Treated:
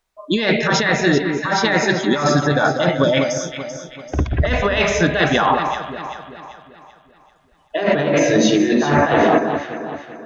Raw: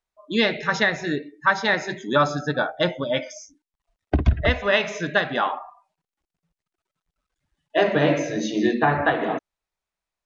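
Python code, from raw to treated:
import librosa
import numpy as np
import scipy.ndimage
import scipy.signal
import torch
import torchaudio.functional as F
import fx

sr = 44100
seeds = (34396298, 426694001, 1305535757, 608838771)

y = fx.over_compress(x, sr, threshold_db=-25.0, ratio=-1.0)
y = fx.echo_alternate(y, sr, ms=194, hz=1400.0, feedback_pct=65, wet_db=-6.0)
y = y * librosa.db_to_amplitude(8.5)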